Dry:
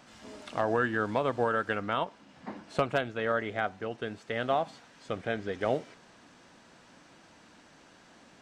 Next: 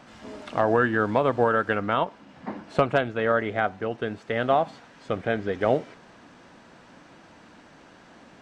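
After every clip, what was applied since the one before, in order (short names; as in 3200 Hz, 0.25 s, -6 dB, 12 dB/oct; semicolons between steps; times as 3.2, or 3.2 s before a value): high shelf 3700 Hz -10 dB; gain +7 dB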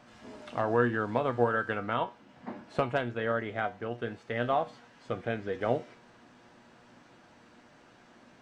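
resonator 120 Hz, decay 0.25 s, harmonics all, mix 70%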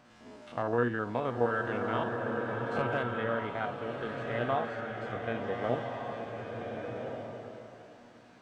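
stepped spectrum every 50 ms; bloom reverb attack 1.47 s, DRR 1.5 dB; gain -2 dB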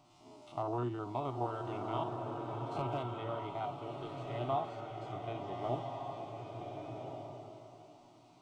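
fixed phaser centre 330 Hz, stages 8; gain -1.5 dB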